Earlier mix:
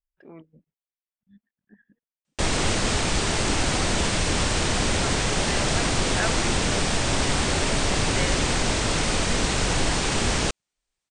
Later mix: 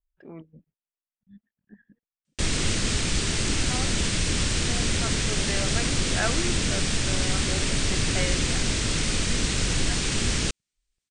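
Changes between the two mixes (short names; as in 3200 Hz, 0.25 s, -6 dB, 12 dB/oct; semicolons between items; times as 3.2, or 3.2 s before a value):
speech: add low shelf 220 Hz +8 dB; background: add bell 790 Hz -12 dB 1.6 oct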